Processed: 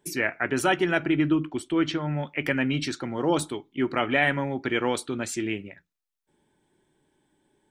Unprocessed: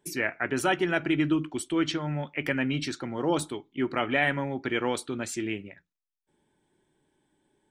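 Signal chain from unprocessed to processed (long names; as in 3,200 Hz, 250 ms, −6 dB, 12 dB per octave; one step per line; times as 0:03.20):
0:01.04–0:02.16: high-shelf EQ 4,000 Hz → 5,800 Hz −11 dB
level +2.5 dB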